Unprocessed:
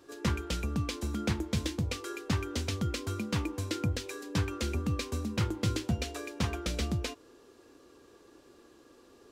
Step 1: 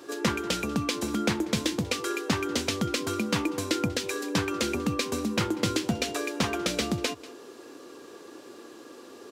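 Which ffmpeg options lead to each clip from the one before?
-filter_complex "[0:a]highpass=200,aecho=1:1:190:0.0794,asplit=2[s0][s1];[s1]acompressor=threshold=0.00794:ratio=6,volume=1.19[s2];[s0][s2]amix=inputs=2:normalize=0,volume=1.78"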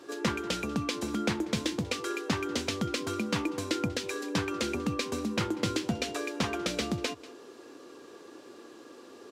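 -af "highshelf=f=11000:g=-9,volume=0.708"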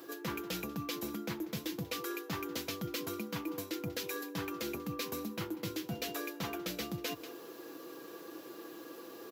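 -af "aecho=1:1:6.1:0.46,areverse,acompressor=threshold=0.0158:ratio=6,areverse,aexciter=amount=14.8:drive=4.2:freq=12000"

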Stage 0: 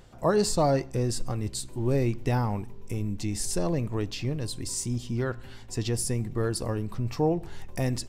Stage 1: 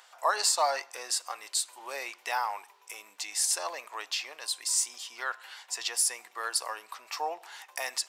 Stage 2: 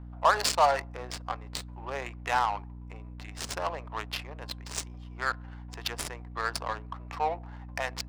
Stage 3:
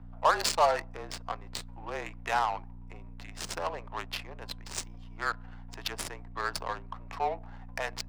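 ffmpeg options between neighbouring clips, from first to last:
-af "highpass=f=840:w=0.5412,highpass=f=840:w=1.3066,volume=1.88"
-af "aeval=exprs='val(0)+0.00501*(sin(2*PI*60*n/s)+sin(2*PI*2*60*n/s)/2+sin(2*PI*3*60*n/s)/3+sin(2*PI*4*60*n/s)/4+sin(2*PI*5*60*n/s)/5)':c=same,adynamicsmooth=sensitivity=3.5:basefreq=570,volume=1.68"
-af "afreqshift=-32,volume=0.841"

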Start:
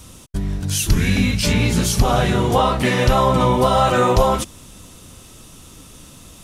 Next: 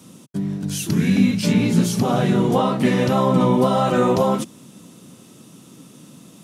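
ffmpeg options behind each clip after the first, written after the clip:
-af "highpass=f=140:w=0.5412,highpass=f=140:w=1.3066,equalizer=f=200:t=o:w=2.4:g=11,volume=0.473"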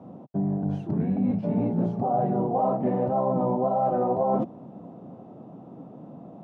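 -af "lowpass=f=730:t=q:w=4.9,areverse,acompressor=threshold=0.0794:ratio=6,areverse"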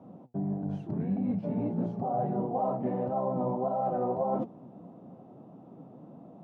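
-af "flanger=delay=3:depth=5.5:regen=78:speed=1.6:shape=triangular,volume=0.841"

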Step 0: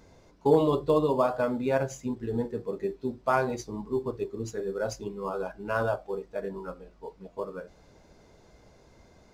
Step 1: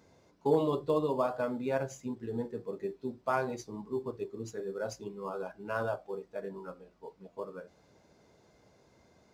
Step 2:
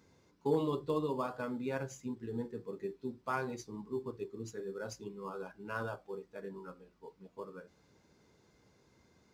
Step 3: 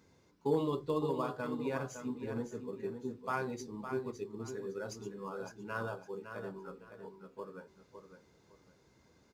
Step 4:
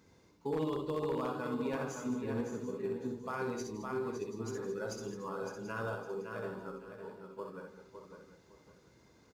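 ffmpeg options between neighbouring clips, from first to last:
-af "highpass=94,volume=0.531"
-af "equalizer=f=650:w=2.4:g=-9.5,volume=0.794"
-af "aecho=1:1:559|1118|1677:0.376|0.0977|0.0254"
-af "alimiter=level_in=1.68:limit=0.0631:level=0:latency=1:release=64,volume=0.596,aecho=1:1:64|164|213|733:0.596|0.188|0.224|0.188,aeval=exprs='0.0398*(abs(mod(val(0)/0.0398+3,4)-2)-1)':c=same,volume=1.12"

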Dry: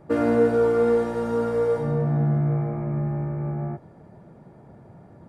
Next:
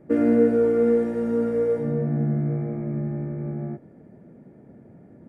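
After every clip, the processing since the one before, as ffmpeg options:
-af "equalizer=f=250:t=o:w=1:g=11,equalizer=f=500:t=o:w=1:g=5,equalizer=f=1000:t=o:w=1:g=-8,equalizer=f=2000:t=o:w=1:g=7,equalizer=f=4000:t=o:w=1:g=-7,volume=0.473"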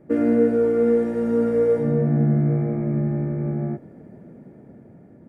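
-af "dynaudnorm=f=350:g=7:m=1.78"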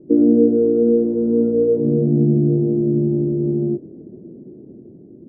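-af "lowpass=f=360:t=q:w=3.8"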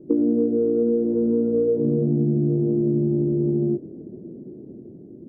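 -af "acompressor=threshold=0.141:ratio=6"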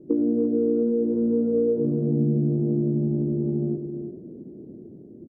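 -af "aecho=1:1:340:0.335,volume=0.75"

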